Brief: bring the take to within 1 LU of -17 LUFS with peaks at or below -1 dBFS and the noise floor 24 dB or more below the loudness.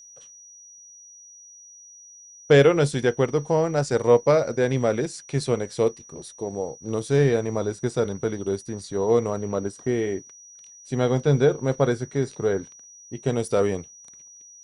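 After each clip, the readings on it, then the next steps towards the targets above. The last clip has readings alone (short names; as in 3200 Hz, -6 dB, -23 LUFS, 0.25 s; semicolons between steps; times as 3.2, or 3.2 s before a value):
steady tone 5800 Hz; tone level -45 dBFS; loudness -23.5 LUFS; peak -4.5 dBFS; loudness target -17.0 LUFS
-> notch 5800 Hz, Q 30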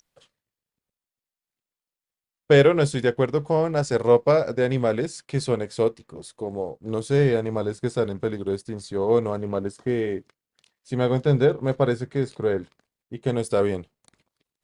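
steady tone none; loudness -23.5 LUFS; peak -4.5 dBFS; loudness target -17.0 LUFS
-> gain +6.5 dB; limiter -1 dBFS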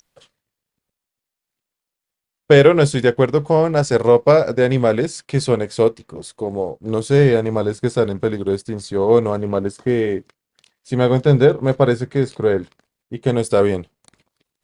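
loudness -17.5 LUFS; peak -1.0 dBFS; noise floor -84 dBFS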